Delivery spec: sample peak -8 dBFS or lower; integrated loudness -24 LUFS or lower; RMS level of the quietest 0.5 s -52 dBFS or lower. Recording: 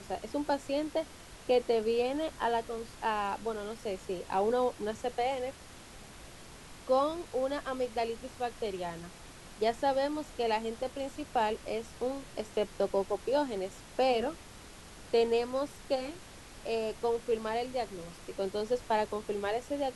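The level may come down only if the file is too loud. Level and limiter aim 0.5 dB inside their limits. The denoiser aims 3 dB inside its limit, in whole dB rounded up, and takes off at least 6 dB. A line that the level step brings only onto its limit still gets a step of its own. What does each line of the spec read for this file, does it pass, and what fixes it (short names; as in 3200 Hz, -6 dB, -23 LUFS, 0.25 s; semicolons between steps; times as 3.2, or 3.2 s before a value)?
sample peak -16.5 dBFS: OK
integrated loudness -33.0 LUFS: OK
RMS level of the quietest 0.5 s -50 dBFS: fail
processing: denoiser 6 dB, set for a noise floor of -50 dBFS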